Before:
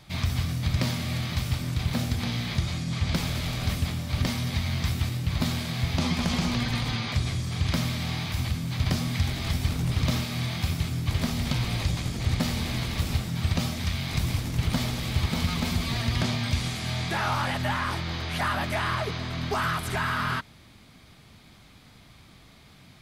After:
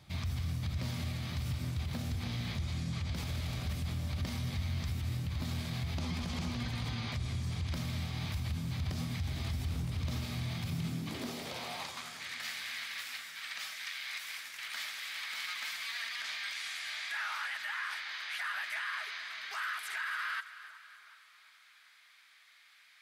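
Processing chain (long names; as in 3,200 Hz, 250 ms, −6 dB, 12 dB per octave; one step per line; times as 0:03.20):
high-pass filter sweep 69 Hz → 1,700 Hz, 0:10.37–0:12.23
brickwall limiter −20.5 dBFS, peak gain reduction 11 dB
echo with a time of its own for lows and highs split 1,500 Hz, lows 371 ms, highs 278 ms, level −14.5 dB
level −8 dB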